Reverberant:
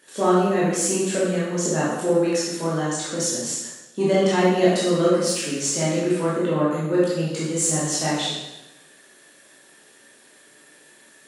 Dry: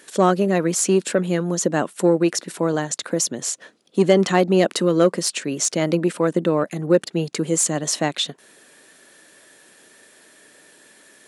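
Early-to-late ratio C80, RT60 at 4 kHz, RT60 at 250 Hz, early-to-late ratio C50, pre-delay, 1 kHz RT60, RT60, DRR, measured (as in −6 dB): 2.5 dB, 0.95 s, 0.95 s, −1.0 dB, 7 ms, 1.0 s, 1.0 s, −8.5 dB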